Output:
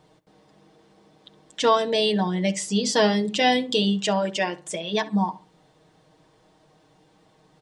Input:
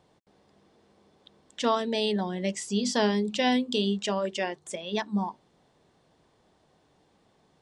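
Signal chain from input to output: comb 6.4 ms; on a send: darkening echo 66 ms, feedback 29%, low-pass 2300 Hz, level -16 dB; on the sum: gain +4.5 dB

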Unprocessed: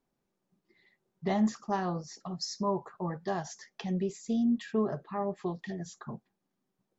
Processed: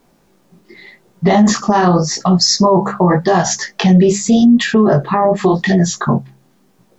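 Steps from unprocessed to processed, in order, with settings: de-hum 66.98 Hz, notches 3; chorus 0.86 Hz, delay 16.5 ms, depth 7.3 ms; maximiser +32.5 dB; gain -2.5 dB

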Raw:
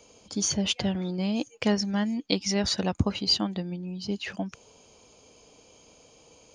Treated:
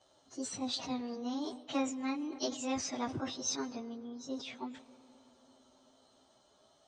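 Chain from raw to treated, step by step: pitch shift by moving bins +5.5 st; LPF 6600 Hz 24 dB/oct; low shelf 340 Hz -6.5 dB; reverb RT60 4.3 s, pre-delay 70 ms, DRR 18.5 dB; wide varispeed 0.952×; sustainer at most 110 dB/s; gain -5 dB

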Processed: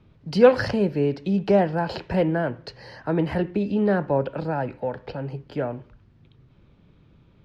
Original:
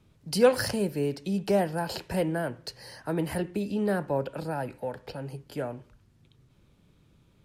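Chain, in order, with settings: air absorption 220 m; gain +6.5 dB

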